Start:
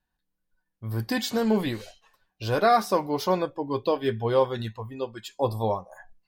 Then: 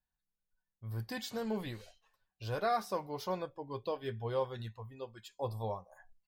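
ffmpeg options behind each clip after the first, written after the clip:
ffmpeg -i in.wav -af "firequalizer=gain_entry='entry(120,0);entry(280,-8);entry(460,-3)':delay=0.05:min_phase=1,volume=-9dB" out.wav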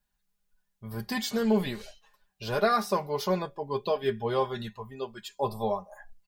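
ffmpeg -i in.wav -af "aecho=1:1:4.9:0.73,volume=8dB" out.wav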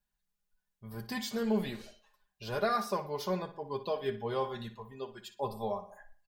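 ffmpeg -i in.wav -filter_complex "[0:a]asplit=2[link_01][link_02];[link_02]adelay=60,lowpass=frequency=4500:poles=1,volume=-12dB,asplit=2[link_03][link_04];[link_04]adelay=60,lowpass=frequency=4500:poles=1,volume=0.42,asplit=2[link_05][link_06];[link_06]adelay=60,lowpass=frequency=4500:poles=1,volume=0.42,asplit=2[link_07][link_08];[link_08]adelay=60,lowpass=frequency=4500:poles=1,volume=0.42[link_09];[link_01][link_03][link_05][link_07][link_09]amix=inputs=5:normalize=0,volume=-6dB" out.wav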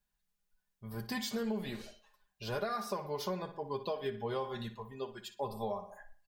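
ffmpeg -i in.wav -af "acompressor=threshold=-33dB:ratio=10,volume=1dB" out.wav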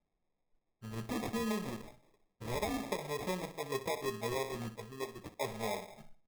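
ffmpeg -i in.wav -af "acrusher=samples=30:mix=1:aa=0.000001" out.wav

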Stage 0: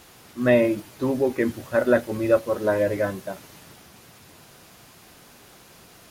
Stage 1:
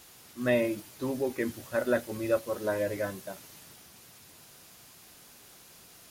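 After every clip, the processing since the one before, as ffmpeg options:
ffmpeg -i in.wav -af "highshelf=frequency=3300:gain=9,volume=-8.5dB" out.wav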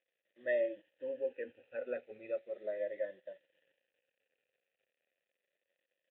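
ffmpeg -i in.wav -filter_complex "[0:a]afftfilt=real='re*pow(10,12/40*sin(2*PI*(1.2*log(max(b,1)*sr/1024/100)/log(2)-(-0.37)*(pts-256)/sr)))':imag='im*pow(10,12/40*sin(2*PI*(1.2*log(max(b,1)*sr/1024/100)/log(2)-(-0.37)*(pts-256)/sr)))':win_size=1024:overlap=0.75,aresample=8000,aeval=exprs='sgn(val(0))*max(abs(val(0))-0.00224,0)':channel_layout=same,aresample=44100,asplit=3[link_01][link_02][link_03];[link_01]bandpass=frequency=530:width_type=q:width=8,volume=0dB[link_04];[link_02]bandpass=frequency=1840:width_type=q:width=8,volume=-6dB[link_05];[link_03]bandpass=frequency=2480:width_type=q:width=8,volume=-9dB[link_06];[link_04][link_05][link_06]amix=inputs=3:normalize=0,volume=-2.5dB" out.wav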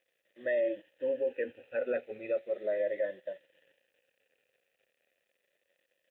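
ffmpeg -i in.wav -af "alimiter=level_in=8dB:limit=-24dB:level=0:latency=1:release=11,volume=-8dB,volume=8.5dB" out.wav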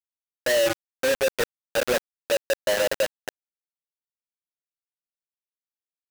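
ffmpeg -i in.wav -af "acrusher=bits=4:mix=0:aa=0.000001,volume=6.5dB" out.wav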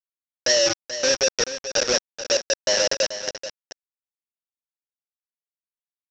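ffmpeg -i in.wav -af "aresample=16000,aeval=exprs='sgn(val(0))*max(abs(val(0))-0.00794,0)':channel_layout=same,aresample=44100,lowpass=frequency=5600:width_type=q:width=12,aecho=1:1:433:0.266" out.wav

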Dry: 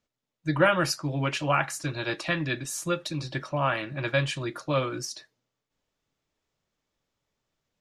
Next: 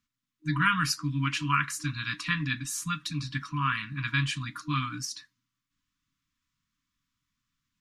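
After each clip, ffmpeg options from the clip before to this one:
ffmpeg -i in.wav -af "afftfilt=real='re*(1-between(b*sr/4096,310,960))':imag='im*(1-between(b*sr/4096,310,960))':win_size=4096:overlap=0.75" out.wav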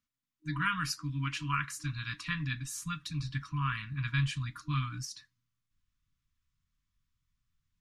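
ffmpeg -i in.wav -af "asubboost=boost=7:cutoff=110,volume=-6.5dB" out.wav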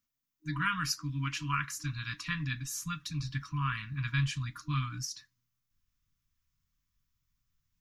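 ffmpeg -i in.wav -af "aexciter=amount=1.5:drive=3.6:freq=5200" out.wav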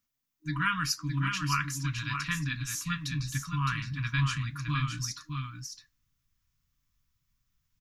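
ffmpeg -i in.wav -af "aecho=1:1:613:0.501,volume=2.5dB" out.wav

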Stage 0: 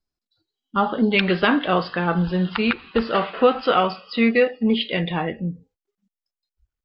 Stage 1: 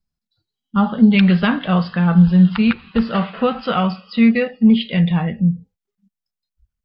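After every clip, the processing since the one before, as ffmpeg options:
ffmpeg -i in.wav -af "lowshelf=frequency=250:width_type=q:width=3:gain=7,volume=-1dB" out.wav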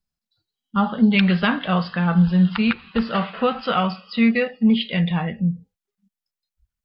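ffmpeg -i in.wav -af "lowshelf=frequency=410:gain=-6" out.wav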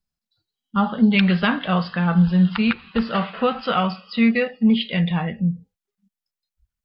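ffmpeg -i in.wav -af anull out.wav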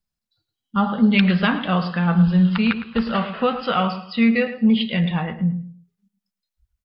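ffmpeg -i in.wav -filter_complex "[0:a]asplit=2[link_01][link_02];[link_02]adelay=109,lowpass=frequency=2000:poles=1,volume=-10dB,asplit=2[link_03][link_04];[link_04]adelay=109,lowpass=frequency=2000:poles=1,volume=0.28,asplit=2[link_05][link_06];[link_06]adelay=109,lowpass=frequency=2000:poles=1,volume=0.28[link_07];[link_01][link_03][link_05][link_07]amix=inputs=4:normalize=0" out.wav

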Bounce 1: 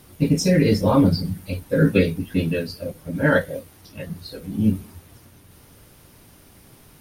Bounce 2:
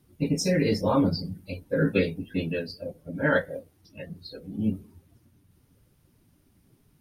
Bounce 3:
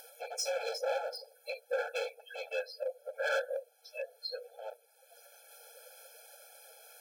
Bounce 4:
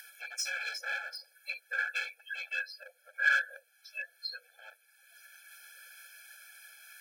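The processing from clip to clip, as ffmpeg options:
ffmpeg -i in.wav -af "afftdn=noise_reduction=15:noise_floor=-43,lowshelf=frequency=200:gain=-7,volume=-4dB" out.wav
ffmpeg -i in.wav -filter_complex "[0:a]acrossover=split=240[link_01][link_02];[link_02]acompressor=mode=upward:threshold=-32dB:ratio=2.5[link_03];[link_01][link_03]amix=inputs=2:normalize=0,asoftclip=type=hard:threshold=-27dB,afftfilt=real='re*eq(mod(floor(b*sr/1024/440),2),1)':imag='im*eq(mod(floor(b*sr/1024/440),2),1)':win_size=1024:overlap=0.75" out.wav
ffmpeg -i in.wav -af "highpass=frequency=1800:width_type=q:width=7.1" out.wav

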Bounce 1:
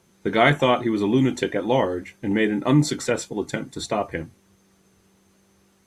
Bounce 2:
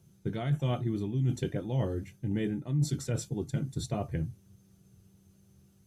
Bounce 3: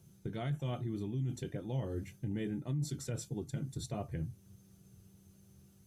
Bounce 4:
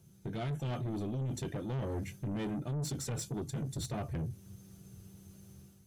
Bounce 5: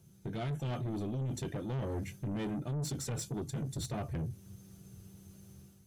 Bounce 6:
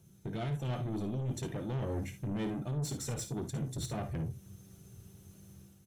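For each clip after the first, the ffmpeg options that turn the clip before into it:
ffmpeg -i in.wav -af "equalizer=frequency=125:width_type=o:width=1:gain=12,equalizer=frequency=250:width_type=o:width=1:gain=-7,equalizer=frequency=500:width_type=o:width=1:gain=-7,equalizer=frequency=1000:width_type=o:width=1:gain=-12,equalizer=frequency=2000:width_type=o:width=1:gain=-12,equalizer=frequency=4000:width_type=o:width=1:gain=-6,equalizer=frequency=8000:width_type=o:width=1:gain=-6,areverse,acompressor=threshold=-27dB:ratio=5,areverse" out.wav
ffmpeg -i in.wav -af "highshelf=frequency=7600:gain=4,alimiter=level_in=4.5dB:limit=-24dB:level=0:latency=1:release=327,volume=-4.5dB" out.wav
ffmpeg -i in.wav -af "dynaudnorm=framelen=120:gausssize=5:maxgain=7dB,asoftclip=type=tanh:threshold=-32.5dB" out.wav
ffmpeg -i in.wav -af anull out.wav
ffmpeg -i in.wav -af "bandreject=frequency=4700:width=13,aecho=1:1:55|70:0.282|0.168" out.wav

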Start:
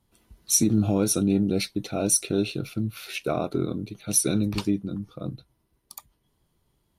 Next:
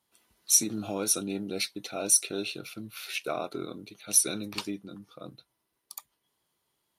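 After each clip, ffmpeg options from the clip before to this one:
ffmpeg -i in.wav -af "highpass=frequency=940:poles=1" out.wav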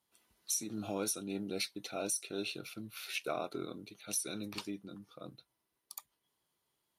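ffmpeg -i in.wav -af "alimiter=limit=-19.5dB:level=0:latency=1:release=267,volume=-4.5dB" out.wav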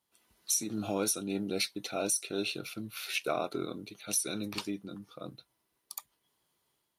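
ffmpeg -i in.wav -af "dynaudnorm=framelen=100:gausssize=5:maxgain=5dB" out.wav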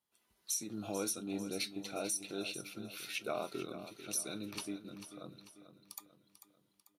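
ffmpeg -i in.wav -filter_complex "[0:a]flanger=delay=4.8:depth=2:regen=82:speed=0.32:shape=sinusoidal,asplit=2[link_01][link_02];[link_02]aecho=0:1:443|886|1329|1772|2215:0.251|0.116|0.0532|0.0244|0.0112[link_03];[link_01][link_03]amix=inputs=2:normalize=0,volume=-2dB" out.wav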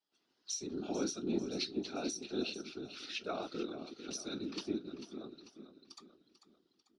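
ffmpeg -i in.wav -af "highpass=frequency=260:width=0.5412,highpass=frequency=260:width=1.3066,equalizer=frequency=300:width_type=q:width=4:gain=8,equalizer=frequency=540:width_type=q:width=4:gain=-7,equalizer=frequency=1000:width_type=q:width=4:gain=-7,equalizer=frequency=2200:width_type=q:width=4:gain=-8,equalizer=frequency=5000:width_type=q:width=4:gain=5,lowpass=frequency=5500:width=0.5412,lowpass=frequency=5500:width=1.3066,afftfilt=real='hypot(re,im)*cos(2*PI*random(0))':imag='hypot(re,im)*sin(2*PI*random(1))':win_size=512:overlap=0.75,volume=7dB" out.wav

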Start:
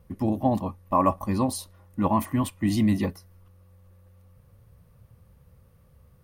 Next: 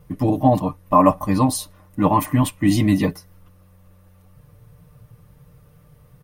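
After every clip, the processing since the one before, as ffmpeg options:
ffmpeg -i in.wav -af "bandreject=frequency=4500:width=27,aecho=1:1:6.7:0.75,volume=6dB" out.wav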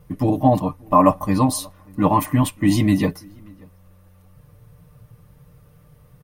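ffmpeg -i in.wav -filter_complex "[0:a]asplit=2[link_01][link_02];[link_02]adelay=583.1,volume=-27dB,highshelf=frequency=4000:gain=-13.1[link_03];[link_01][link_03]amix=inputs=2:normalize=0" out.wav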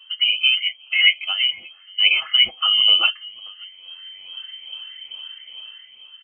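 ffmpeg -i in.wav -af "afftfilt=real='re*pow(10,16/40*sin(2*PI*(0.51*log(max(b,1)*sr/1024/100)/log(2)-(-2.3)*(pts-256)/sr)))':imag='im*pow(10,16/40*sin(2*PI*(0.51*log(max(b,1)*sr/1024/100)/log(2)-(-2.3)*(pts-256)/sr)))':win_size=1024:overlap=0.75,lowpass=frequency=2700:width_type=q:width=0.5098,lowpass=frequency=2700:width_type=q:width=0.6013,lowpass=frequency=2700:width_type=q:width=0.9,lowpass=frequency=2700:width_type=q:width=2.563,afreqshift=-3200,dynaudnorm=framelen=160:gausssize=9:maxgain=10.5dB,volume=-1dB" out.wav

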